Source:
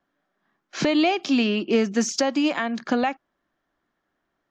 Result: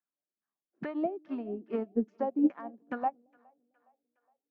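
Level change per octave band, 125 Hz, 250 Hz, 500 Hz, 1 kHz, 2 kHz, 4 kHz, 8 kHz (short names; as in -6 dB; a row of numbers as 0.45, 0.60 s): under -10 dB, -9.5 dB, -11.0 dB, -8.5 dB, -20.5 dB, under -35 dB, under -40 dB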